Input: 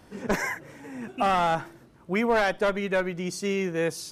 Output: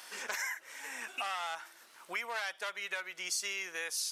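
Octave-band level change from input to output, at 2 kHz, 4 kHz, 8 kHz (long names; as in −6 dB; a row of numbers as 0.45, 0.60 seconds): −6.0, −1.5, +2.5 decibels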